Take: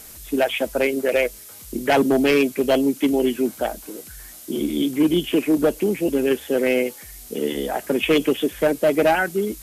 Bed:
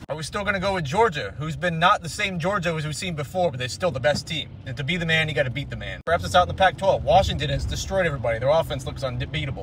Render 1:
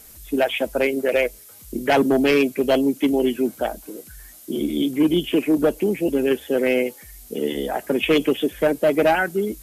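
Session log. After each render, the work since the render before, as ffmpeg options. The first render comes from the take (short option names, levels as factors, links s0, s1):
-af "afftdn=nr=6:nf=-42"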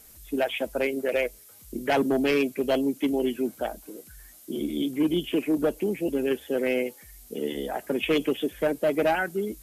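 -af "volume=0.501"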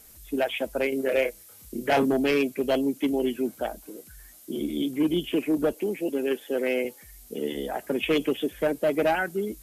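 -filter_complex "[0:a]asettb=1/sr,asplit=3[s0][s1][s2];[s0]atrim=end=0.894[s3];[s1]atrim=start=0.89:end=2.13,asetpts=PTS-STARTPTS,afade=t=in:d=0.004:c=qsin,afade=t=out:st=1.236:d=0.004:c=qsin,asplit=2[s4][s5];[s5]adelay=30,volume=0.562[s6];[s4][s6]amix=inputs=2:normalize=0,atrim=end_sample=54684[s7];[s2]atrim=start=2.126[s8];[s3][s7]acrossfade=d=0.004:c1=hsin:c2=qsin[s9];[s9][s8]acrossfade=d=0.004:c1=qsin:c2=hsin,asettb=1/sr,asplit=3[s10][s11][s12];[s10]atrim=end=5.734[s13];[s11]atrim=start=5.73:end=6.85,asetpts=PTS-STARTPTS,afade=t=in:d=0.004:c=qsin,afade=t=out:st=1.116:d=0.004:c=qsin,highpass=230[s14];[s12]atrim=start=6.846[s15];[s13][s14]acrossfade=d=0.004:c1=hsin:c2=qsin[s16];[s16][s15]acrossfade=d=0.004:c1=qsin:c2=hsin"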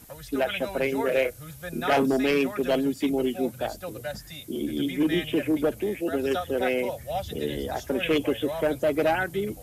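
-filter_complex "[1:a]volume=0.211[s0];[0:a][s0]amix=inputs=2:normalize=0"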